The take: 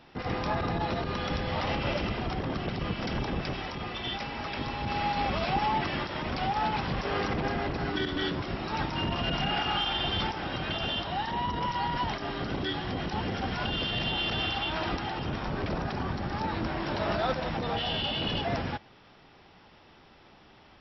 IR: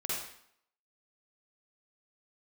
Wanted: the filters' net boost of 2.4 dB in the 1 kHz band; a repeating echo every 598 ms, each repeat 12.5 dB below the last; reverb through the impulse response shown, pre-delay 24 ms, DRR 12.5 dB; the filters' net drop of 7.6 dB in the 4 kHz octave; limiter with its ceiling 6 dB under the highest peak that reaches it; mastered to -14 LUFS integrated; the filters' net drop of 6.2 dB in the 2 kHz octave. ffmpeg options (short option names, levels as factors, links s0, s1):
-filter_complex "[0:a]equalizer=f=1000:t=o:g=5,equalizer=f=2000:t=o:g=-8.5,equalizer=f=4000:t=o:g=-7,alimiter=limit=0.075:level=0:latency=1,aecho=1:1:598|1196|1794:0.237|0.0569|0.0137,asplit=2[s0][s1];[1:a]atrim=start_sample=2205,adelay=24[s2];[s1][s2]afir=irnorm=-1:irlink=0,volume=0.141[s3];[s0][s3]amix=inputs=2:normalize=0,volume=7.94"